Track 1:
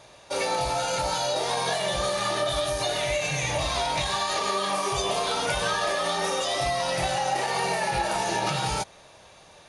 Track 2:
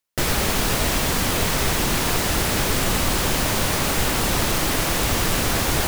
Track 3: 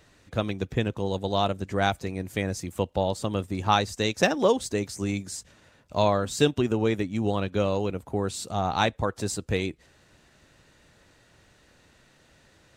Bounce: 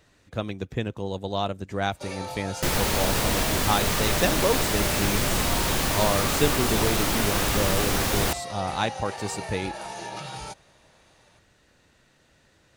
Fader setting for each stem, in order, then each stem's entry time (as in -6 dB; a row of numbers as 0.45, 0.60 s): -9.5, -3.5, -2.5 dB; 1.70, 2.45, 0.00 s